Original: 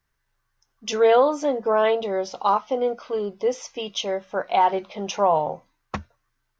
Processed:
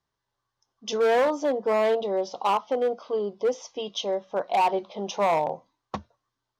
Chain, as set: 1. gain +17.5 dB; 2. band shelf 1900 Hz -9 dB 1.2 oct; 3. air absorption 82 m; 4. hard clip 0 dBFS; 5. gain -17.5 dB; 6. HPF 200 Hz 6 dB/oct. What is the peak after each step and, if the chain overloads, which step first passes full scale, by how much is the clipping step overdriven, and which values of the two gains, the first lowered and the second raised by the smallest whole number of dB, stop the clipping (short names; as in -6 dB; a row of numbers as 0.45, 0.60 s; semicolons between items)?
+9.5, +9.5, +9.0, 0.0, -17.5, -14.0 dBFS; step 1, 9.0 dB; step 1 +8.5 dB, step 5 -8.5 dB